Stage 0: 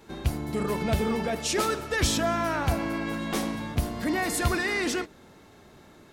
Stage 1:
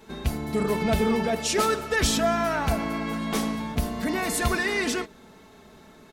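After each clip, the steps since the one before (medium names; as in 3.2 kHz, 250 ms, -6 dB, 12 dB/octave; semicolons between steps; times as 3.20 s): comb 4.6 ms, depth 48%; trim +1 dB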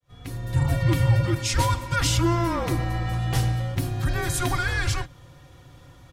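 fade-in on the opening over 0.56 s; resonant low shelf 160 Hz -8.5 dB, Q 3; frequency shift -340 Hz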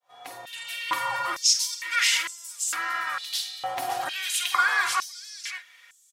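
on a send: multi-tap echo 50/565 ms -10/-7 dB; on the sum: step-sequenced high-pass 2.2 Hz 760–7600 Hz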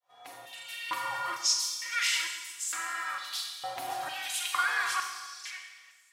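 Schroeder reverb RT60 1.3 s, combs from 29 ms, DRR 4 dB; trim -7 dB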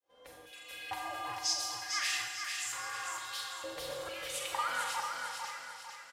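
frequency shift -220 Hz; on a send: feedback delay 450 ms, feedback 42%, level -5 dB; on the sum: trim -6 dB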